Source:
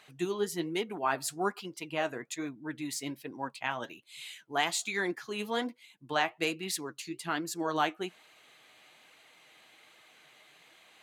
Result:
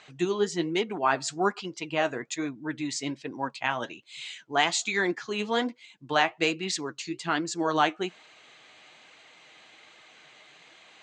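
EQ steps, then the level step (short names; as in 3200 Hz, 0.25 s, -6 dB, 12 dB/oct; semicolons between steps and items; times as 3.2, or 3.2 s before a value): steep low-pass 7700 Hz 48 dB/oct; +5.5 dB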